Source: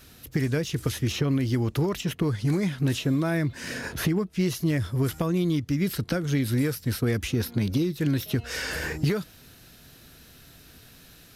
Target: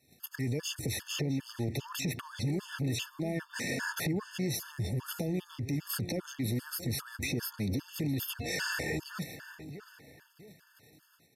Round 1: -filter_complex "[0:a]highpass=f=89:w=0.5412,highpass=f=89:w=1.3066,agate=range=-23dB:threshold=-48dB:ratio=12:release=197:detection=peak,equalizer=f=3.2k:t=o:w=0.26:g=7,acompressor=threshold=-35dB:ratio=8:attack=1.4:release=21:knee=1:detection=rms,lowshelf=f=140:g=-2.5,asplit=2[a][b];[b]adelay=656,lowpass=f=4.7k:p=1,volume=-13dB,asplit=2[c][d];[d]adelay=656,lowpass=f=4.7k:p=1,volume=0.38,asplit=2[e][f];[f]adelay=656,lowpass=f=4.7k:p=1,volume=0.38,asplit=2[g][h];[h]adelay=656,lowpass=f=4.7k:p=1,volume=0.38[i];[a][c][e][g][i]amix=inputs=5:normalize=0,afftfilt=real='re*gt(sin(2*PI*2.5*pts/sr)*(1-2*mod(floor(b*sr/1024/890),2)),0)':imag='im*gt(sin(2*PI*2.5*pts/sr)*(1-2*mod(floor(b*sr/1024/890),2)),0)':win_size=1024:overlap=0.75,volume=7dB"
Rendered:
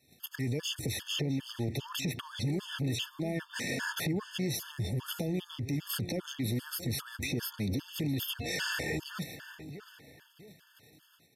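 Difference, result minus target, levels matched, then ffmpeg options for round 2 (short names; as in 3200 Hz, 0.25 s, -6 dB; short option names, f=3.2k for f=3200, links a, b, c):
4000 Hz band +3.0 dB
-filter_complex "[0:a]highpass=f=89:w=0.5412,highpass=f=89:w=1.3066,agate=range=-23dB:threshold=-48dB:ratio=12:release=197:detection=peak,equalizer=f=3.2k:t=o:w=0.26:g=-5,acompressor=threshold=-35dB:ratio=8:attack=1.4:release=21:knee=1:detection=rms,lowshelf=f=140:g=-2.5,asplit=2[a][b];[b]adelay=656,lowpass=f=4.7k:p=1,volume=-13dB,asplit=2[c][d];[d]adelay=656,lowpass=f=4.7k:p=1,volume=0.38,asplit=2[e][f];[f]adelay=656,lowpass=f=4.7k:p=1,volume=0.38,asplit=2[g][h];[h]adelay=656,lowpass=f=4.7k:p=1,volume=0.38[i];[a][c][e][g][i]amix=inputs=5:normalize=0,afftfilt=real='re*gt(sin(2*PI*2.5*pts/sr)*(1-2*mod(floor(b*sr/1024/890),2)),0)':imag='im*gt(sin(2*PI*2.5*pts/sr)*(1-2*mod(floor(b*sr/1024/890),2)),0)':win_size=1024:overlap=0.75,volume=7dB"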